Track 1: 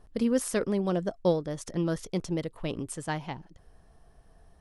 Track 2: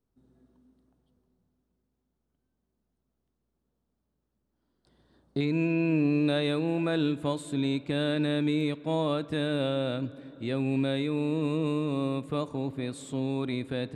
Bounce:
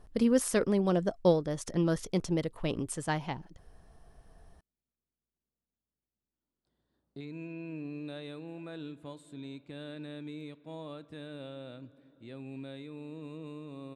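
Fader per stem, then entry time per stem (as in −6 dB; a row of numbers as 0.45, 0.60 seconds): +0.5, −15.5 decibels; 0.00, 1.80 seconds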